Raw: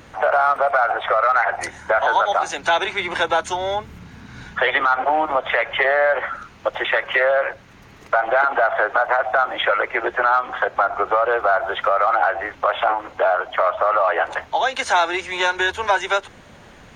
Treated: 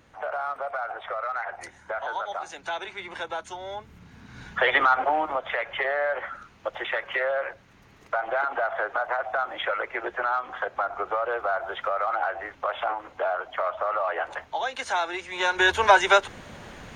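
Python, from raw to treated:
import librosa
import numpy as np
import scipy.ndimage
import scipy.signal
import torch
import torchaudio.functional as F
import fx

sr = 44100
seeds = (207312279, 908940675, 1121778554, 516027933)

y = fx.gain(x, sr, db=fx.line((3.64, -13.5), (4.82, -1.5), (5.43, -9.0), (15.31, -9.0), (15.72, 2.0)))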